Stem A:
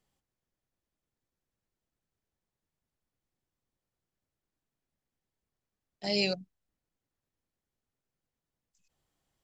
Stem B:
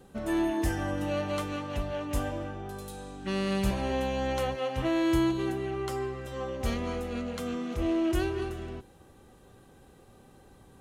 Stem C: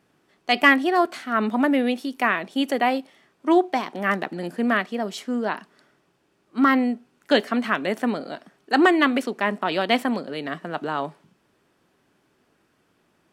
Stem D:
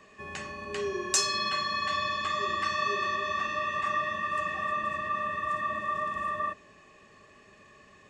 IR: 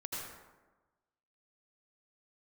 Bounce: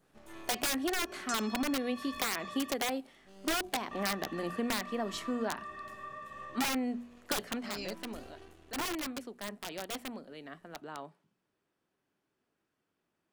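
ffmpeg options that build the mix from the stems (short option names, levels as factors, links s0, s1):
-filter_complex "[0:a]adelay=1600,volume=0.2[s0];[1:a]highshelf=f=2100:g=8.5,aeval=exprs='max(val(0),0)':c=same,volume=0.106,asplit=2[s1][s2];[s2]volume=0.299[s3];[2:a]adynamicequalizer=threshold=0.0141:dfrequency=3600:dqfactor=0.82:tfrequency=3600:tqfactor=0.82:attack=5:release=100:ratio=0.375:range=2:mode=cutabove:tftype=bell,aeval=exprs='(mod(4.73*val(0)+1,2)-1)/4.73':c=same,bandreject=f=60:t=h:w=6,bandreject=f=120:t=h:w=6,bandreject=f=180:t=h:w=6,bandreject=f=240:t=h:w=6,volume=0.562,afade=t=out:st=7.17:d=0.58:silence=0.251189,asplit=2[s4][s5];[3:a]adelay=150,volume=0.2,asplit=3[s6][s7][s8];[s6]atrim=end=2.76,asetpts=PTS-STARTPTS,afade=t=out:st=2.756:d=0.004:c=hsin[s9];[s7]atrim=start=2.76:end=3.91,asetpts=PTS-STARTPTS,volume=0[s10];[s8]atrim=start=3.91,asetpts=PTS-STARTPTS,afade=t=in:d=0.004:c=hsin[s11];[s9][s10][s11]concat=n=3:v=0:a=1[s12];[s5]apad=whole_len=476478[s13];[s1][s13]sidechaincompress=threshold=0.02:ratio=8:attack=16:release=1060[s14];[4:a]atrim=start_sample=2205[s15];[s3][s15]afir=irnorm=-1:irlink=0[s16];[s0][s14][s4][s12][s16]amix=inputs=5:normalize=0,acompressor=threshold=0.0355:ratio=10"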